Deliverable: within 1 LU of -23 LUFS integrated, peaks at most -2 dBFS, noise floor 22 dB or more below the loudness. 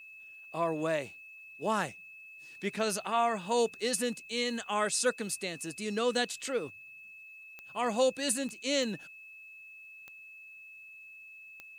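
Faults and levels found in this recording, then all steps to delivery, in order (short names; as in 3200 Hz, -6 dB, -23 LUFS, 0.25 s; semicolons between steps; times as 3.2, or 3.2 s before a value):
clicks 5; steady tone 2600 Hz; tone level -48 dBFS; loudness -32.0 LUFS; peak -15.0 dBFS; loudness target -23.0 LUFS
-> de-click; notch 2600 Hz, Q 30; gain +9 dB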